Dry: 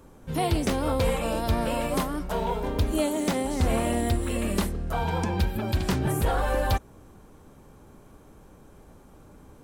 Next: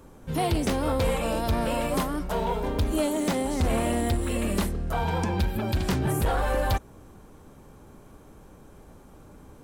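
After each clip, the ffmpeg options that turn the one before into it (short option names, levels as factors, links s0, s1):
-af "asoftclip=type=tanh:threshold=0.119,volume=1.19"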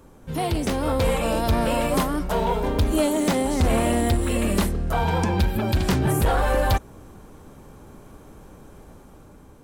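-af "dynaudnorm=f=360:g=5:m=1.68"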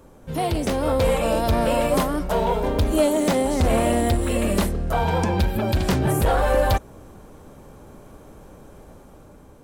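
-af "equalizer=f=580:t=o:w=0.62:g=4.5"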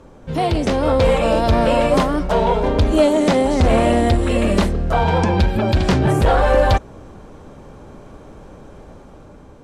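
-af "lowpass=5900,volume=1.78"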